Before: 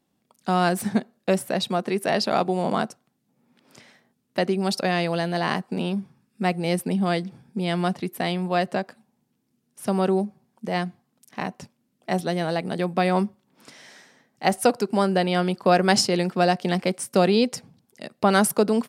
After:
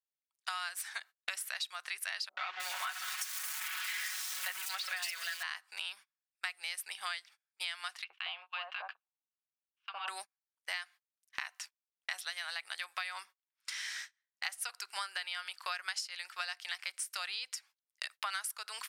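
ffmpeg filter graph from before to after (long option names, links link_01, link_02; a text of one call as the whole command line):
ffmpeg -i in.wav -filter_complex "[0:a]asettb=1/sr,asplit=3[link_01][link_02][link_03];[link_01]atrim=end=2.294[link_04];[link_02]atrim=start=2.29:end=5.43,asetpts=PTS-STARTPTS,afade=type=in:duration=0.004:curve=qsin,afade=type=out:start_time=3.136:duration=0.004:curve=qsin,aeval=exprs='val(0)+0.5*0.0562*sgn(val(0))':channel_layout=same,aecho=1:1:5.4:0.87,atrim=end_sample=138474,acrossover=split=330|4000[link_05][link_06][link_07];[link_06]adelay=80[link_08];[link_07]adelay=310[link_09];[link_05][link_08][link_09]amix=inputs=3:normalize=0,atrim=end_sample=138474[link_10];[link_03]atrim=start=5.426[link_11];[link_04][link_10]acrossfade=duration=0.004:curve1=hsin:curve2=qsin[link_12];[link_12][link_11]acrossfade=duration=0.004:curve1=qsin:curve2=hsin,asettb=1/sr,asplit=3[link_13][link_14][link_15];[link_13]atrim=end=8.044[link_16];[link_14]atrim=start=8.04:end=10.08,asetpts=PTS-STARTPTS,afade=type=in:duration=0.004:curve=qsin,afade=type=out:start_time=2.036:duration=0.004:curve=qsin,acompressor=threshold=-31dB:ratio=3:attack=3.2:release=140:knee=1:detection=peak,highpass=410,equalizer=frequency=500:width_type=q:width=4:gain=6,equalizer=frequency=780:width_type=q:width=4:gain=9,equalizer=frequency=1100:width_type=q:width=4:gain=7,equalizer=frequency=1900:width_type=q:width=4:gain=-9,equalizer=frequency=2800:width_type=q:width=4:gain=7,lowpass=frequency=3200:width=0.5412,lowpass=frequency=3200:width=1.3066,acrossover=split=1200[link_17][link_18];[link_17]adelay=60[link_19];[link_19][link_18]amix=inputs=2:normalize=0,atrim=end_sample=89964[link_20];[link_15]atrim=start=10.076[link_21];[link_16][link_20]acrossfade=duration=0.004:curve1=hsin:curve2=qsin[link_22];[link_22][link_21]acrossfade=duration=0.004:curve1=qsin:curve2=hsin,highpass=frequency=1400:width=0.5412,highpass=frequency=1400:width=1.3066,agate=range=-34dB:threshold=-51dB:ratio=16:detection=peak,acompressor=threshold=-45dB:ratio=12,volume=9.5dB" out.wav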